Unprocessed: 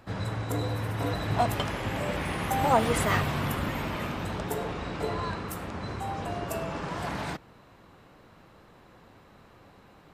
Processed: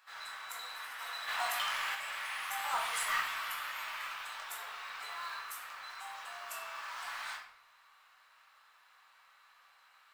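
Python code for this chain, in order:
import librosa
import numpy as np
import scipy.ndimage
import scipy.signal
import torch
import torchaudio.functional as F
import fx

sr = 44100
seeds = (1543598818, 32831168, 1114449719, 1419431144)

y = scipy.signal.sosfilt(scipy.signal.butter(4, 1100.0, 'highpass', fs=sr, output='sos'), x)
y = fx.quant_float(y, sr, bits=2)
y = 10.0 ** (-21.0 / 20.0) * np.tanh(y / 10.0 ** (-21.0 / 20.0))
y = fx.room_shoebox(y, sr, seeds[0], volume_m3=130.0, walls='mixed', distance_m=1.1)
y = fx.env_flatten(y, sr, amount_pct=50, at=(1.27, 1.94), fade=0.02)
y = y * 10.0 ** (-6.0 / 20.0)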